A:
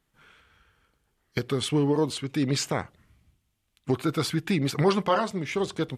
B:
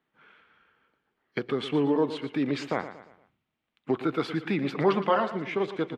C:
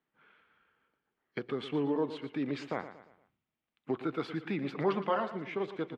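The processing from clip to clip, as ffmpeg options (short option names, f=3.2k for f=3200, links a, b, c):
-filter_complex "[0:a]acrossover=split=170 3400:gain=0.0794 1 0.0631[a][b][c];[a][b][c]amix=inputs=3:normalize=0,asplit=2[d][e];[e]aecho=0:1:116|232|348|464:0.237|0.0996|0.0418|0.0176[f];[d][f]amix=inputs=2:normalize=0"
-af "highshelf=f=6.2k:g=-7,volume=-6.5dB"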